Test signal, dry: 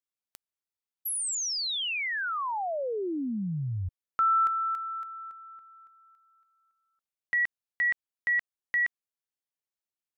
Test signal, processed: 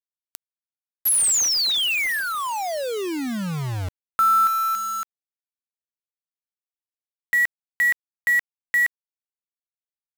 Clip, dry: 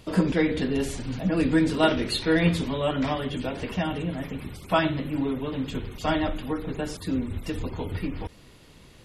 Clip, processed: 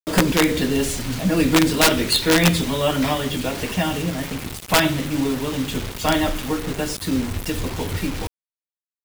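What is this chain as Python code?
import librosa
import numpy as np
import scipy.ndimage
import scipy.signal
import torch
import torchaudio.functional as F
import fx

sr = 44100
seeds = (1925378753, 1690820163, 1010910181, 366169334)

y = fx.high_shelf(x, sr, hz=3200.0, db=7.5)
y = fx.quant_dither(y, sr, seeds[0], bits=6, dither='none')
y = (np.mod(10.0 ** (12.5 / 20.0) * y + 1.0, 2.0) - 1.0) / 10.0 ** (12.5 / 20.0)
y = y * librosa.db_to_amplitude(5.0)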